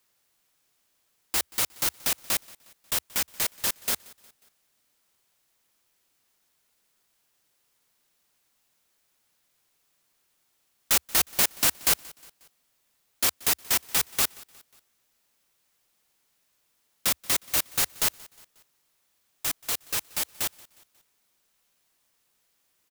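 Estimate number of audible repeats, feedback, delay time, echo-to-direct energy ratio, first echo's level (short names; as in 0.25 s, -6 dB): 2, 48%, 0.18 s, -22.0 dB, -23.0 dB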